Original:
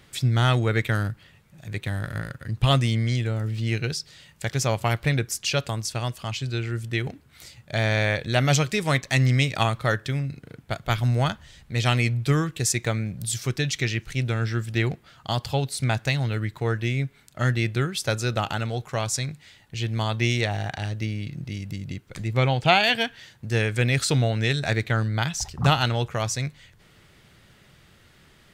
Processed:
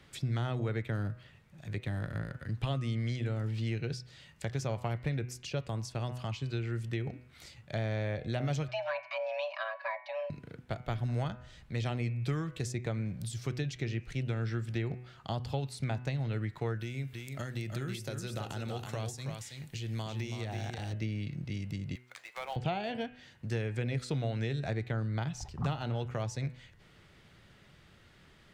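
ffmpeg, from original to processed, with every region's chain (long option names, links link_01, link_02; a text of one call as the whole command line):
ffmpeg -i in.wav -filter_complex "[0:a]asettb=1/sr,asplit=3[link_01][link_02][link_03];[link_01]atrim=end=8.684[link_04];[link_02]atrim=start=8.68:end=10.3,asetpts=PTS-STARTPTS,afade=type=in:duration=0.004:curve=qsin,afade=type=out:start_time=1.616:duration=0.004:curve=qsin,highpass=frequency=170:width=0.5412,highpass=frequency=170:width=1.3066,equalizer=frequency=370:width_type=q:width=4:gain=-9,equalizer=frequency=1200:width_type=q:width=4:gain=9,equalizer=frequency=1900:width_type=q:width=4:gain=7,lowpass=frequency=4300:width=0.5412,lowpass=frequency=4300:width=1.3066,aecho=1:1:5.6:0.88,atrim=end_sample=71442,afreqshift=440[link_05];[link_03]atrim=start=10.296[link_06];[link_04][link_05]acrossfade=duration=0.004:curve1=hsin:curve2=qsin[link_07];[link_07][link_06]acrossfade=duration=0.004:curve1=qsin:curve2=hsin,asettb=1/sr,asplit=3[link_08][link_09][link_10];[link_08]atrim=end=16.804[link_11];[link_09]atrim=start=16.8:end=20.93,asetpts=PTS-STARTPTS,afade=type=in:duration=0.004:curve=qsin,afade=type=out:start_time=4.126:duration=0.004:curve=qsin,aemphasis=mode=production:type=75fm,acompressor=threshold=-27dB:ratio=6:attack=3.2:release=140:knee=1:detection=peak,aecho=1:1:327:0.501,atrim=end_sample=182133[link_12];[link_10]atrim=start=20.926[link_13];[link_11][link_12]acrossfade=duration=0.004:curve1=hsin:curve2=qsin[link_14];[link_14][link_13]acrossfade=duration=0.004:curve1=qsin:curve2=hsin,asettb=1/sr,asplit=3[link_15][link_16][link_17];[link_15]atrim=end=21.954[link_18];[link_16]atrim=start=21.95:end=22.56,asetpts=PTS-STARTPTS,afade=type=in:duration=0.004:curve=qsin,afade=type=out:start_time=0.606:duration=0.004:curve=qsin,highpass=frequency=770:width=0.5412,highpass=frequency=770:width=1.3066,acrusher=bits=2:mode=log:mix=0:aa=0.000001[link_19];[link_17]atrim=start=22.556[link_20];[link_18][link_19]acrossfade=duration=0.004:curve1=hsin:curve2=qsin[link_21];[link_21][link_20]acrossfade=duration=0.004:curve1=qsin:curve2=hsin,highshelf=frequency=7900:gain=-11.5,bandreject=frequency=124.2:width_type=h:width=4,bandreject=frequency=248.4:width_type=h:width=4,bandreject=frequency=372.6:width_type=h:width=4,bandreject=frequency=496.8:width_type=h:width=4,bandreject=frequency=621:width_type=h:width=4,bandreject=frequency=745.2:width_type=h:width=4,bandreject=frequency=869.4:width_type=h:width=4,bandreject=frequency=993.6:width_type=h:width=4,bandreject=frequency=1117.8:width_type=h:width=4,bandreject=frequency=1242:width_type=h:width=4,bandreject=frequency=1366.2:width_type=h:width=4,bandreject=frequency=1490.4:width_type=h:width=4,bandreject=frequency=1614.6:width_type=h:width=4,bandreject=frequency=1738.8:width_type=h:width=4,bandreject=frequency=1863:width_type=h:width=4,bandreject=frequency=1987.2:width_type=h:width=4,bandreject=frequency=2111.4:width_type=h:width=4,bandreject=frequency=2235.6:width_type=h:width=4,bandreject=frequency=2359.8:width_type=h:width=4,bandreject=frequency=2484:width_type=h:width=4,bandreject=frequency=2608.2:width_type=h:width=4,bandreject=frequency=2732.4:width_type=h:width=4,bandreject=frequency=2856.6:width_type=h:width=4,bandreject=frequency=2980.8:width_type=h:width=4,acrossover=split=110|740[link_22][link_23][link_24];[link_22]acompressor=threshold=-37dB:ratio=4[link_25];[link_23]acompressor=threshold=-29dB:ratio=4[link_26];[link_24]acompressor=threshold=-40dB:ratio=4[link_27];[link_25][link_26][link_27]amix=inputs=3:normalize=0,volume=-4dB" out.wav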